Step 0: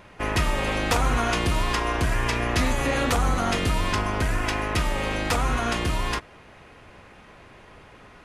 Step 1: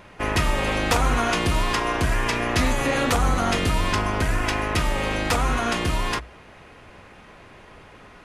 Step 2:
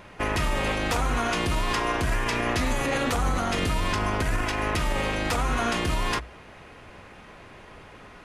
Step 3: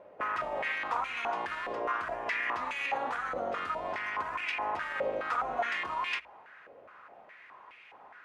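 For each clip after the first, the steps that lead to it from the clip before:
notches 60/120 Hz; gain +2 dB
limiter -16.5 dBFS, peak gain reduction 7 dB
stepped band-pass 4.8 Hz 560–2400 Hz; gain +3 dB

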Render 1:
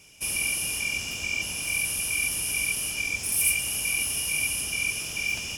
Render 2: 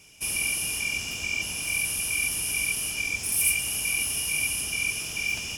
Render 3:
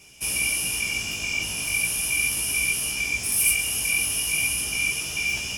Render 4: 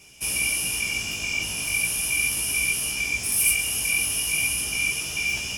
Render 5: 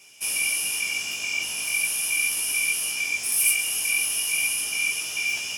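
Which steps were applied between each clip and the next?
notch 550 Hz, Q 14
chorus 0.39 Hz, delay 15 ms, depth 4.3 ms; gain +6 dB
nothing audible
HPF 690 Hz 6 dB/oct

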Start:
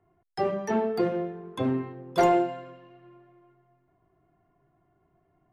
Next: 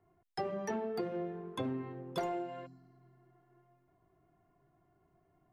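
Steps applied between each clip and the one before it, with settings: compressor 12:1, threshold -30 dBFS, peak gain reduction 13.5 dB; spectral repair 2.69–3.57, 330–4000 Hz after; gain -3 dB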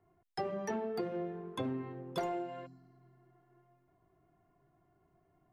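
nothing audible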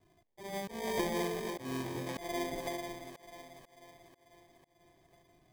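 sample-and-hold 32×; split-band echo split 370 Hz, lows 0.358 s, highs 0.492 s, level -7.5 dB; auto swell 0.237 s; gain +3 dB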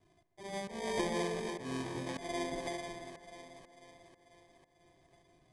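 Chebyshev low-pass 10000 Hz, order 4; analogue delay 0.141 s, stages 2048, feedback 68%, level -14.5 dB

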